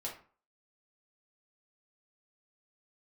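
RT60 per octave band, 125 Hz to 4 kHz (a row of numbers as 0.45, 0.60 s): 0.40, 0.40, 0.40, 0.45, 0.35, 0.25 s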